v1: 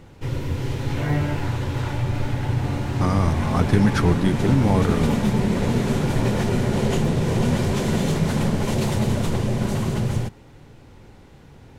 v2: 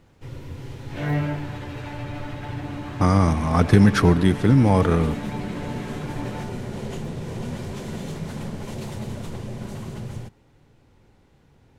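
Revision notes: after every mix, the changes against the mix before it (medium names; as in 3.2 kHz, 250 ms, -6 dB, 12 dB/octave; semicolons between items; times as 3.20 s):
speech +3.5 dB; first sound -10.5 dB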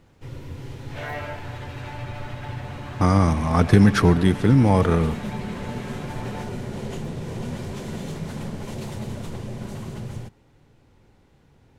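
second sound: add high-pass 510 Hz 24 dB/octave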